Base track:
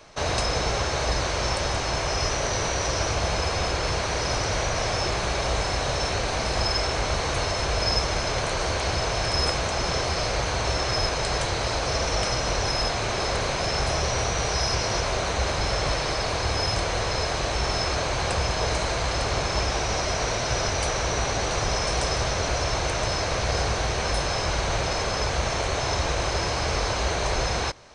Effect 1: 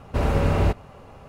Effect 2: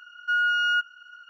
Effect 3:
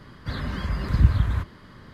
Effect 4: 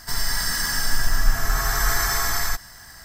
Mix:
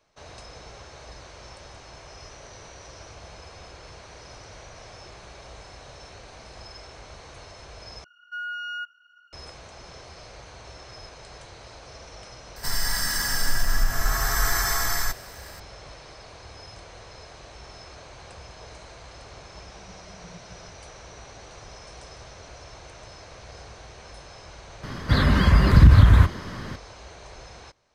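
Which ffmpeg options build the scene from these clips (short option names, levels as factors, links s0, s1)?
-filter_complex "[3:a]asplit=2[s0][s1];[0:a]volume=0.112[s2];[4:a]alimiter=limit=0.376:level=0:latency=1:release=118[s3];[s0]asuperpass=centerf=180:order=8:qfactor=4.7[s4];[s1]alimiter=level_in=4.73:limit=0.891:release=50:level=0:latency=1[s5];[s2]asplit=2[s6][s7];[s6]atrim=end=8.044[s8];[2:a]atrim=end=1.29,asetpts=PTS-STARTPTS,volume=0.316[s9];[s7]atrim=start=9.326[s10];[s3]atrim=end=3.04,asetpts=PTS-STARTPTS,volume=0.794,afade=t=in:d=0.004:c=hsin,afade=t=out:st=3.036:d=0.004:c=hsin,adelay=12560[s11];[s4]atrim=end=1.93,asetpts=PTS-STARTPTS,volume=0.188,afade=t=in:d=0.004:c=hsin,afade=t=out:st=1.926:d=0.004:c=hsin,adelay=19290[s12];[s5]atrim=end=1.93,asetpts=PTS-STARTPTS,volume=0.75,afade=t=in:d=0.004:c=hsin,afade=t=out:st=1.926:d=0.004:c=hsin,adelay=24830[s13];[s8][s9]acrossfade=d=0.004:c1=hsin:c2=hsin[s14];[s14][s10]acrossfade=d=0.004:c1=hsin:c2=hsin[s15];[s15][s11][s12][s13]amix=inputs=4:normalize=0"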